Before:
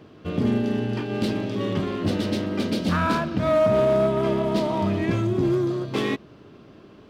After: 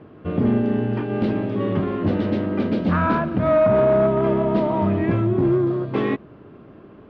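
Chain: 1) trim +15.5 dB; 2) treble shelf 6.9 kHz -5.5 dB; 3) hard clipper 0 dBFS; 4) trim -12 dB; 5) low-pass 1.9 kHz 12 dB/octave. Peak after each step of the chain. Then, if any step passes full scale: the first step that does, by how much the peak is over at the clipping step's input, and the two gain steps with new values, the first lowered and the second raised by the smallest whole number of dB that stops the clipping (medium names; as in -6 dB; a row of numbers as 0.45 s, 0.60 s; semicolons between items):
+4.0 dBFS, +4.0 dBFS, 0.0 dBFS, -12.0 dBFS, -11.5 dBFS; step 1, 4.0 dB; step 1 +11.5 dB, step 4 -8 dB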